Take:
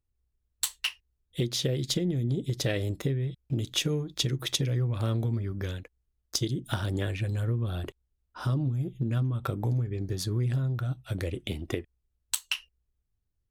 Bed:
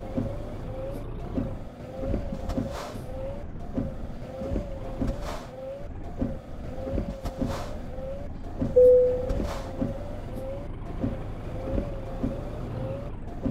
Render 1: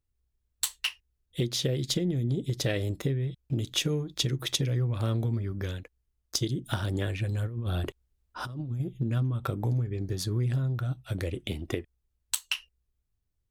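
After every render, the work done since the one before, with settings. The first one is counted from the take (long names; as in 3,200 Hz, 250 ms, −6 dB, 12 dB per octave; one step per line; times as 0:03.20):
0:07.45–0:08.80: compressor whose output falls as the input rises −31 dBFS, ratio −0.5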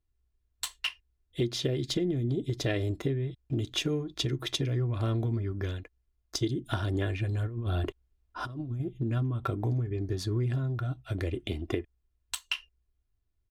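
low-pass filter 3,200 Hz 6 dB per octave
comb filter 2.9 ms, depth 43%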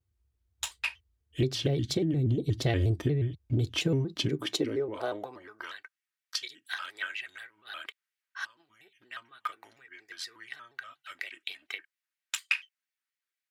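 high-pass filter sweep 79 Hz → 1,800 Hz, 0:03.65–0:05.99
pitch modulation by a square or saw wave square 4.2 Hz, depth 160 cents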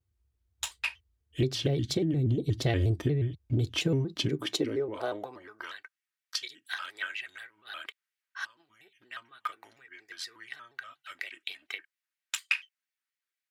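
no processing that can be heard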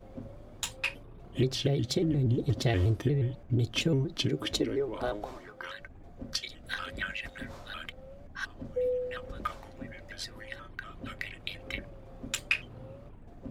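mix in bed −14 dB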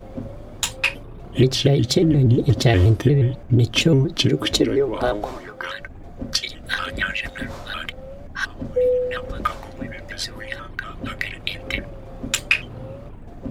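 level +11.5 dB
brickwall limiter −2 dBFS, peak gain reduction 1.5 dB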